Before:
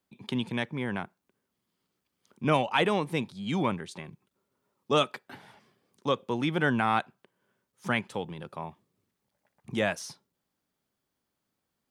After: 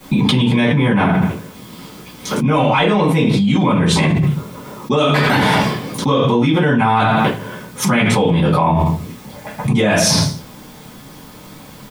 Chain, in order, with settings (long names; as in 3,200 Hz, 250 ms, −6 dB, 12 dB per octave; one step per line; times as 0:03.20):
0:02.60–0:03.00: low-pass filter 8,200 Hz 12 dB per octave
repeating echo 83 ms, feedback 32%, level −18 dB
convolution reverb RT60 0.30 s, pre-delay 4 ms, DRR −11 dB
envelope flattener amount 100%
level −10.5 dB